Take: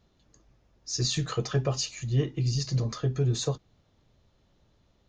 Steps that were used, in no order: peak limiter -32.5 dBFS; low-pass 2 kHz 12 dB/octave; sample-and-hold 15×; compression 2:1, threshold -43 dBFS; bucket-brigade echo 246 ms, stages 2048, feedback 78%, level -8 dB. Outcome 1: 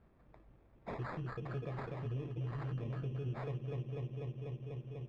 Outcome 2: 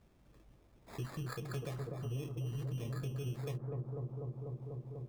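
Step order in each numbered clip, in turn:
bucket-brigade echo > compression > peak limiter > sample-and-hold > low-pass; low-pass > sample-and-hold > bucket-brigade echo > compression > peak limiter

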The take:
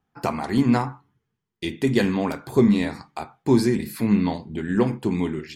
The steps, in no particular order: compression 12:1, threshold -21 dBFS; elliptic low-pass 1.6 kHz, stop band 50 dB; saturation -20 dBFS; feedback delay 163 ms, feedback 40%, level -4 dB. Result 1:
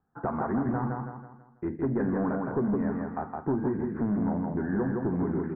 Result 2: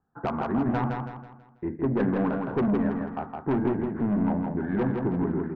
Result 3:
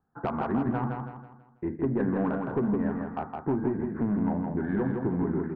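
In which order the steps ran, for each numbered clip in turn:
compression > feedback delay > saturation > elliptic low-pass; elliptic low-pass > saturation > compression > feedback delay; compression > elliptic low-pass > saturation > feedback delay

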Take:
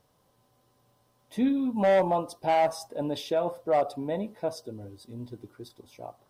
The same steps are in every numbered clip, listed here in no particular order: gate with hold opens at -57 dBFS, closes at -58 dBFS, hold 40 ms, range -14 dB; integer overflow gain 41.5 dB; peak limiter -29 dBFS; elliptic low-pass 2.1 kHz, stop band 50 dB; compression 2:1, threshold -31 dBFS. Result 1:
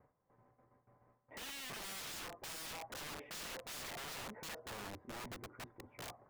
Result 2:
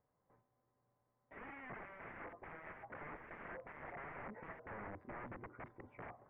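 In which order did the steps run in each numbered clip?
gate with hold > elliptic low-pass > peak limiter > integer overflow > compression; compression > peak limiter > integer overflow > elliptic low-pass > gate with hold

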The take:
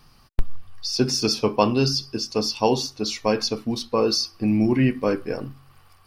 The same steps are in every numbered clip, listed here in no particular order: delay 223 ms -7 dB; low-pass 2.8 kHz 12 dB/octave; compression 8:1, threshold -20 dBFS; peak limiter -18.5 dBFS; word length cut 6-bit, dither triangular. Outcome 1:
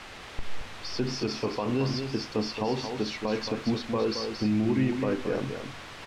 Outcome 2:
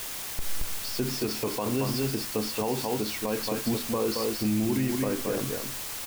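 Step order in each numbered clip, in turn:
compression > word length cut > low-pass > peak limiter > delay; delay > compression > low-pass > word length cut > peak limiter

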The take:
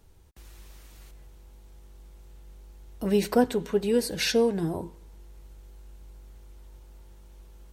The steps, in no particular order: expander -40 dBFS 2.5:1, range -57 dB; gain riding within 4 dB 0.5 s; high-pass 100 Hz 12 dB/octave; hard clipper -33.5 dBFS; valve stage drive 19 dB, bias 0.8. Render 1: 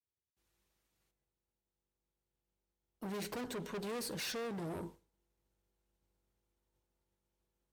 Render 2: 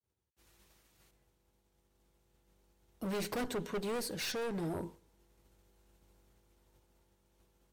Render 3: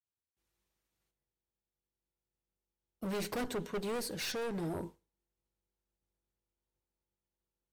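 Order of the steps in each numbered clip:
gain riding > hard clipper > high-pass > expander > valve stage; expander > high-pass > valve stage > hard clipper > gain riding; high-pass > valve stage > hard clipper > expander > gain riding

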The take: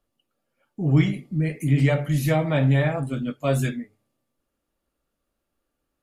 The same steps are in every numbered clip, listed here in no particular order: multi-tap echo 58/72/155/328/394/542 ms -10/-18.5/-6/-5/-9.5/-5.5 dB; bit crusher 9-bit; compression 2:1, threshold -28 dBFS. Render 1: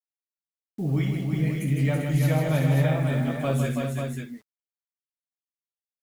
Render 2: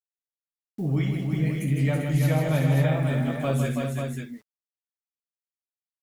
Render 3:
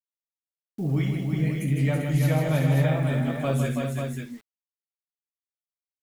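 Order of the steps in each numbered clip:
compression > bit crusher > multi-tap echo; bit crusher > compression > multi-tap echo; compression > multi-tap echo > bit crusher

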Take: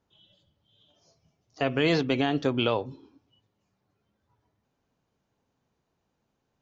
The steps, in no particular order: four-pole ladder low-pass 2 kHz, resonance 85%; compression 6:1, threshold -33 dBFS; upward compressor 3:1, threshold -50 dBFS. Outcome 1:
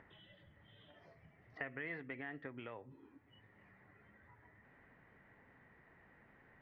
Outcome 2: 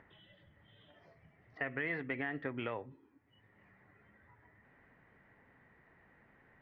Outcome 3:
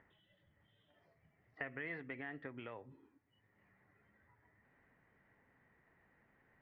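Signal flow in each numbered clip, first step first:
compression > four-pole ladder low-pass > upward compressor; four-pole ladder low-pass > upward compressor > compression; upward compressor > compression > four-pole ladder low-pass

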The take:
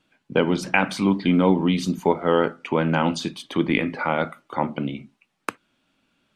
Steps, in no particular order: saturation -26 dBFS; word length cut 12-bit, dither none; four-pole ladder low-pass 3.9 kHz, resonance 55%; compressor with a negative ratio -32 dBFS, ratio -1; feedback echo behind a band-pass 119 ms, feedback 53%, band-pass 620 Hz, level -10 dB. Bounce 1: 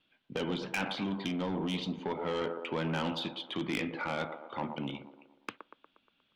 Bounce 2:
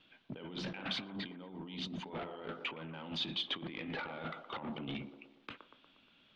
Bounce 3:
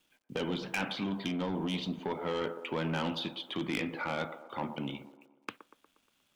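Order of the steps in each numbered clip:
feedback echo behind a band-pass > word length cut > four-pole ladder low-pass > saturation > compressor with a negative ratio; word length cut > compressor with a negative ratio > feedback echo behind a band-pass > saturation > four-pole ladder low-pass; four-pole ladder low-pass > word length cut > saturation > feedback echo behind a band-pass > compressor with a negative ratio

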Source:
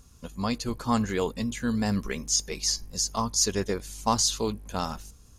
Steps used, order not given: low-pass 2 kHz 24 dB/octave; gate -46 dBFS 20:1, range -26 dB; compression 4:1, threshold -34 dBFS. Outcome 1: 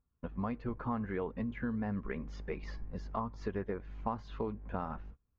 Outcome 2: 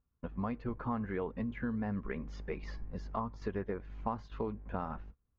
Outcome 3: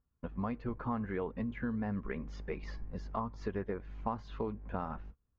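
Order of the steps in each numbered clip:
gate > low-pass > compression; low-pass > compression > gate; low-pass > gate > compression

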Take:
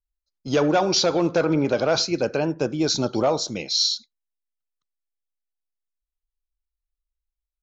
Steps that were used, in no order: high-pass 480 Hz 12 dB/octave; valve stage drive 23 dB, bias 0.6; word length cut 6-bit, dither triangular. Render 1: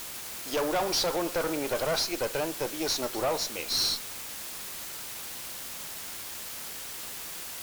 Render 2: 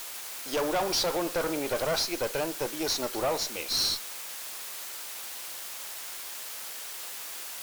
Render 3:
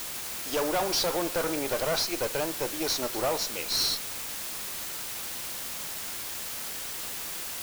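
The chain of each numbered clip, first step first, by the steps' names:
high-pass > word length cut > valve stage; word length cut > high-pass > valve stage; high-pass > valve stage > word length cut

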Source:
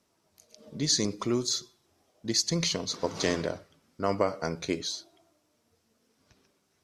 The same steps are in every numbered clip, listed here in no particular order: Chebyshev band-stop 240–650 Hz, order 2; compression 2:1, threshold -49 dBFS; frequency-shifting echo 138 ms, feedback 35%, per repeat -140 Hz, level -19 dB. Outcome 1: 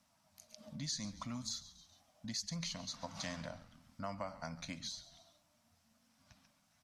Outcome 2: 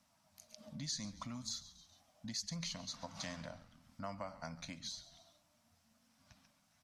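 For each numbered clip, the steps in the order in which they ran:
frequency-shifting echo > Chebyshev band-stop > compression; frequency-shifting echo > compression > Chebyshev band-stop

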